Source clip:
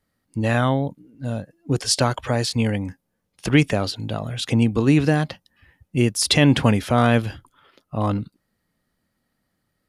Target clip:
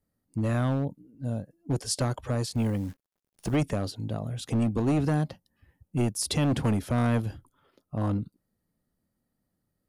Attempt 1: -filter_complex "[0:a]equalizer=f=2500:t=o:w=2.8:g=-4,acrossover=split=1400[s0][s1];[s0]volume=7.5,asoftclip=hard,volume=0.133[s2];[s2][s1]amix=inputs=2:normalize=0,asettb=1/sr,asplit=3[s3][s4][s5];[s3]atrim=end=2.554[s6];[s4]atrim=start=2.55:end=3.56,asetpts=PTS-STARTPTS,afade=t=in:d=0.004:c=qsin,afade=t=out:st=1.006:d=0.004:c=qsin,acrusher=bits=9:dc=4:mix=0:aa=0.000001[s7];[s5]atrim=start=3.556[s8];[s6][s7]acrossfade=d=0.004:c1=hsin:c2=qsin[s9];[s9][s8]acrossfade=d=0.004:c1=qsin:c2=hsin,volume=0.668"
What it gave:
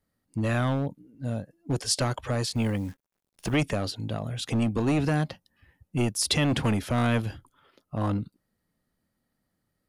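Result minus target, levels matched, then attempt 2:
2 kHz band +5.5 dB
-filter_complex "[0:a]equalizer=f=2500:t=o:w=2.8:g=-12,acrossover=split=1400[s0][s1];[s0]volume=7.5,asoftclip=hard,volume=0.133[s2];[s2][s1]amix=inputs=2:normalize=0,asettb=1/sr,asplit=3[s3][s4][s5];[s3]atrim=end=2.554[s6];[s4]atrim=start=2.55:end=3.56,asetpts=PTS-STARTPTS,afade=t=in:d=0.004:c=qsin,afade=t=out:st=1.006:d=0.004:c=qsin,acrusher=bits=9:dc=4:mix=0:aa=0.000001[s7];[s5]atrim=start=3.556[s8];[s6][s7]acrossfade=d=0.004:c1=hsin:c2=qsin[s9];[s9][s8]acrossfade=d=0.004:c1=qsin:c2=hsin,volume=0.668"

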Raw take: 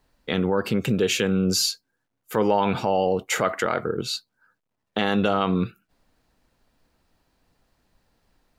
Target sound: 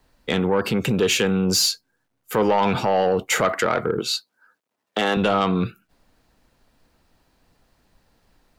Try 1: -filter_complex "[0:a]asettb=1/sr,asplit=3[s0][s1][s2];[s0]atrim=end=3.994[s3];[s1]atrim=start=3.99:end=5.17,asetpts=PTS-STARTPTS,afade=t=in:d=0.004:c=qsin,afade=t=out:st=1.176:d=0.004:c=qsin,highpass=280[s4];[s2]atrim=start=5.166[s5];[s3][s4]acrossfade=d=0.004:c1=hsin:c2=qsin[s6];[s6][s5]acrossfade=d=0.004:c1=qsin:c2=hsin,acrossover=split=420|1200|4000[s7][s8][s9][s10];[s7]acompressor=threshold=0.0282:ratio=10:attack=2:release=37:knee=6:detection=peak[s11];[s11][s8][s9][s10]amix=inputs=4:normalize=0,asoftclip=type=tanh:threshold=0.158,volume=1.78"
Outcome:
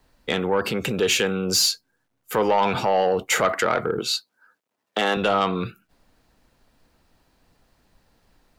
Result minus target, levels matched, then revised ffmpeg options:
compression: peak gain reduction +8.5 dB
-filter_complex "[0:a]asettb=1/sr,asplit=3[s0][s1][s2];[s0]atrim=end=3.994[s3];[s1]atrim=start=3.99:end=5.17,asetpts=PTS-STARTPTS,afade=t=in:d=0.004:c=qsin,afade=t=out:st=1.176:d=0.004:c=qsin,highpass=280[s4];[s2]atrim=start=5.166[s5];[s3][s4]acrossfade=d=0.004:c1=hsin:c2=qsin[s6];[s6][s5]acrossfade=d=0.004:c1=qsin:c2=hsin,acrossover=split=420|1200|4000[s7][s8][s9][s10];[s7]acompressor=threshold=0.0841:ratio=10:attack=2:release=37:knee=6:detection=peak[s11];[s11][s8][s9][s10]amix=inputs=4:normalize=0,asoftclip=type=tanh:threshold=0.158,volume=1.78"

